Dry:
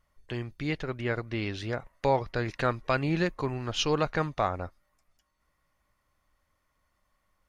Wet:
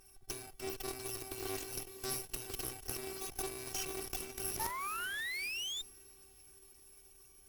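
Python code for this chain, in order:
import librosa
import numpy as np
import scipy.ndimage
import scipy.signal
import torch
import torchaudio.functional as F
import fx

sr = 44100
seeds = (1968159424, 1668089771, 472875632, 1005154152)

p1 = fx.bit_reversed(x, sr, seeds[0], block=64)
p2 = fx.level_steps(p1, sr, step_db=19)
p3 = p2 + 0.77 * np.pad(p2, (int(7.3 * sr / 1000.0), 0))[:len(p2)]
p4 = fx.over_compress(p3, sr, threshold_db=-45.0, ratio=-1.0)
p5 = fx.robotise(p4, sr, hz=382.0)
p6 = fx.low_shelf(p5, sr, hz=98.0, db=-11.0)
p7 = fx.fold_sine(p6, sr, drive_db=14, ceiling_db=-22.0)
p8 = p7 + fx.echo_diffused(p7, sr, ms=466, feedback_pct=59, wet_db=-12.0, dry=0)
p9 = fx.spec_paint(p8, sr, seeds[1], shape='rise', start_s=4.59, length_s=1.23, low_hz=860.0, high_hz=3700.0, level_db=-36.0)
p10 = fx.cheby_harmonics(p9, sr, harmonics=(4, 8), levels_db=(-12, -25), full_scale_db=-19.5)
p11 = fx.doppler_dist(p10, sr, depth_ms=0.13)
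y = p11 * 10.0 ** (-3.0 / 20.0)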